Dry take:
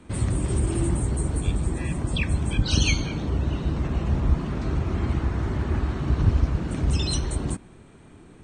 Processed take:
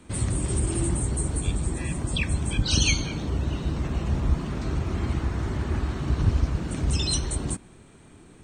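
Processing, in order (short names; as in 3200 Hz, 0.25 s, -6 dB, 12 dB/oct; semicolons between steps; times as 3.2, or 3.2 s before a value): high shelf 4100 Hz +8.5 dB; gain -2 dB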